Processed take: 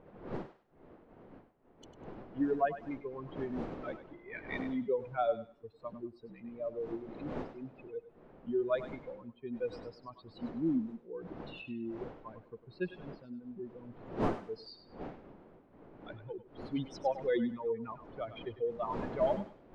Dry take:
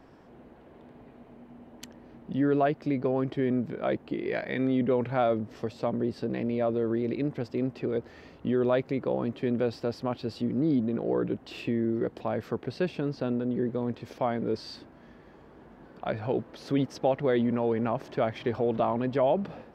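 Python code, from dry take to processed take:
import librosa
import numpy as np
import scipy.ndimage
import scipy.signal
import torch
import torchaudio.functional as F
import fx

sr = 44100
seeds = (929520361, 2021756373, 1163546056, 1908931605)

p1 = fx.bin_expand(x, sr, power=3.0)
p2 = fx.dmg_wind(p1, sr, seeds[0], corner_hz=380.0, level_db=-44.0)
p3 = fx.peak_eq(p2, sr, hz=68.0, db=-10.5, octaves=2.5)
p4 = fx.env_lowpass(p3, sr, base_hz=2800.0, full_db=-28.0)
y = p4 + fx.echo_thinned(p4, sr, ms=100, feedback_pct=30, hz=740.0, wet_db=-10.5, dry=0)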